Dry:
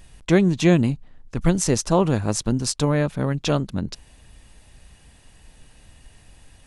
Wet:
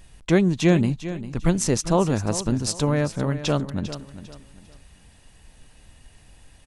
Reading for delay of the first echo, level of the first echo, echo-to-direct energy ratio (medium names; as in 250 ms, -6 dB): 399 ms, -13.0 dB, -12.5 dB